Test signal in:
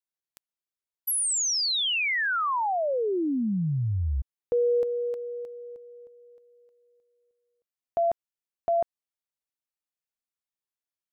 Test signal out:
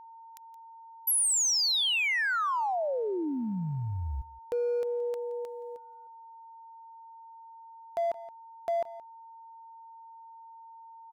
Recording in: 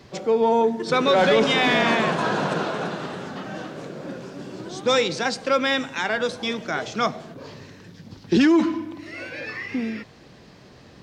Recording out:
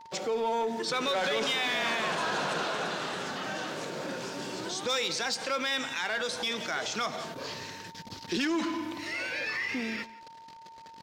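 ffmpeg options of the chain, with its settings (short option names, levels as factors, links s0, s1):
-filter_complex "[0:a]lowshelf=f=370:g=-10.5,asplit=2[s0][s1];[s1]asoftclip=type=hard:threshold=0.0531,volume=0.473[s2];[s0][s2]amix=inputs=2:normalize=0,highshelf=f=2500:g=7,agate=range=0.0316:threshold=0.00447:ratio=16:release=20:detection=rms,aecho=1:1:172:0.0794,aeval=exprs='val(0)+0.00447*sin(2*PI*910*n/s)':c=same,acompressor=threshold=0.0355:ratio=2.5:attack=0.12:release=132:knee=1:detection=peak"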